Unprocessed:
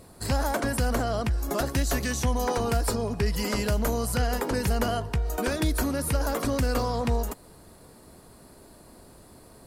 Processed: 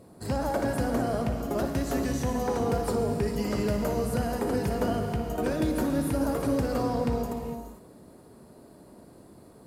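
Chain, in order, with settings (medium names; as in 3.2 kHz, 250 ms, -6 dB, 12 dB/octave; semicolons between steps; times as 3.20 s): high-pass 490 Hz 6 dB/octave; tilt shelf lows +10 dB, about 650 Hz; on a send: flutter echo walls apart 10 m, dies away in 0.28 s; on the sum: gated-style reverb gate 480 ms flat, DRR 3.5 dB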